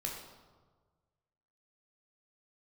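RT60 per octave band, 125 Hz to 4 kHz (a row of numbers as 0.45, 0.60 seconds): 2.0, 1.4, 1.5, 1.4, 0.95, 0.85 seconds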